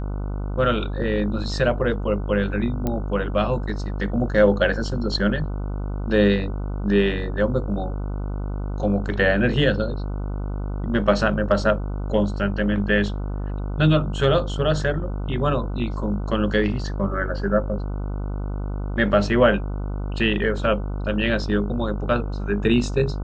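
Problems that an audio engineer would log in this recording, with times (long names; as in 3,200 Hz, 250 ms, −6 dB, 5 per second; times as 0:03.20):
mains buzz 50 Hz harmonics 30 −27 dBFS
0:02.87: click −12 dBFS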